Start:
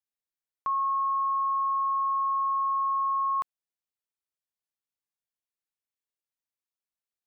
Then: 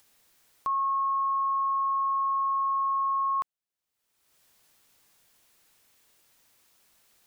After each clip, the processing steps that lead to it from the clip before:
upward compression, threshold −42 dBFS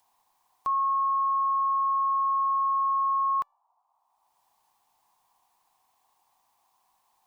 noise in a band 720–1,100 Hz −62 dBFS
tuned comb filter 580 Hz, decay 0.45 s, mix 50%
expander for the loud parts 1.5 to 1, over −56 dBFS
level +7.5 dB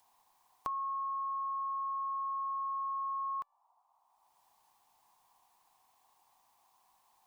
downward compressor 12 to 1, threshold −35 dBFS, peak gain reduction 11 dB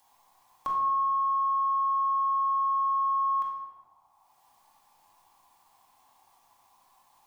in parallel at −11 dB: soft clipping −38.5 dBFS, distortion −16 dB
on the sum: rectangular room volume 920 cubic metres, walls mixed, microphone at 2.3 metres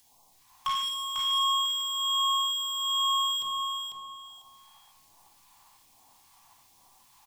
wave folding −27.5 dBFS
all-pass phaser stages 2, 1.2 Hz, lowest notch 380–1,600 Hz
repeating echo 497 ms, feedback 22%, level −5 dB
level +6.5 dB

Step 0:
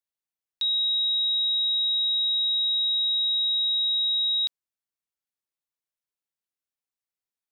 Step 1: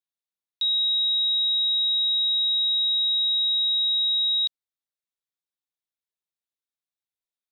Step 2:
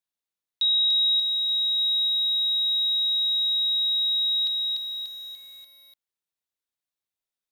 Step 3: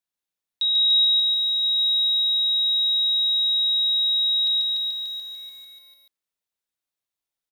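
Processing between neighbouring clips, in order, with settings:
parametric band 3,700 Hz +8 dB 0.36 octaves; level −6 dB
feedback echo at a low word length 293 ms, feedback 55%, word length 9 bits, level −3 dB; level +1.5 dB
single-tap delay 141 ms −3.5 dB

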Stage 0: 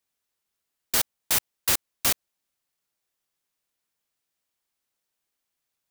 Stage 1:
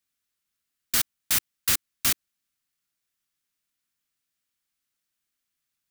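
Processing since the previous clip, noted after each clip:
flat-topped bell 610 Hz −8 dB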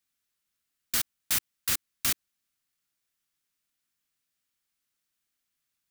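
brickwall limiter −15 dBFS, peak gain reduction 6 dB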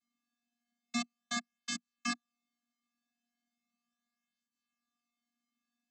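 channel vocoder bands 16, square 238 Hz
flanger whose copies keep moving one way falling 0.37 Hz
level +3 dB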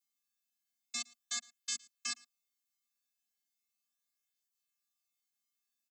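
first-order pre-emphasis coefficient 0.97
single-tap delay 112 ms −24 dB
level +5 dB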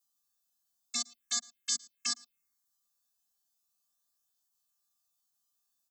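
phaser swept by the level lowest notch 370 Hz, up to 2,500 Hz, full sweep at −38.5 dBFS
level +7.5 dB

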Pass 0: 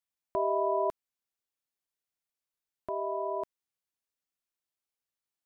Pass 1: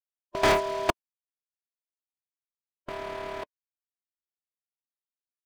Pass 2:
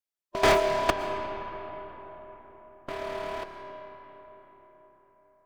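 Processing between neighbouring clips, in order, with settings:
noise gate with hold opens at −19 dBFS; leveller curve on the samples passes 5; harmonic and percussive parts rebalanced percussive +8 dB
flanger 2 Hz, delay 1.1 ms, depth 5.9 ms, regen +80%; convolution reverb RT60 4.6 s, pre-delay 80 ms, DRR 6.5 dB; level +5 dB

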